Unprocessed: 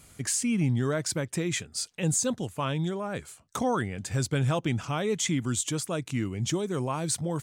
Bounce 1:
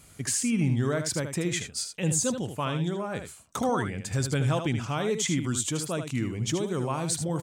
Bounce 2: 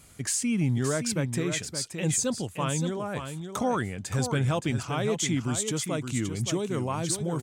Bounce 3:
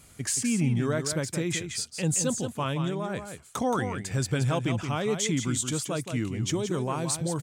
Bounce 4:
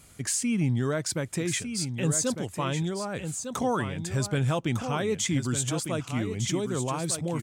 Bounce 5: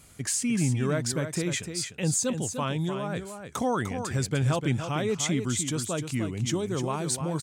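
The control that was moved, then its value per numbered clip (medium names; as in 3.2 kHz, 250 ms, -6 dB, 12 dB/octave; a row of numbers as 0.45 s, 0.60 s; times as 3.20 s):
delay, time: 77 ms, 571 ms, 174 ms, 1203 ms, 300 ms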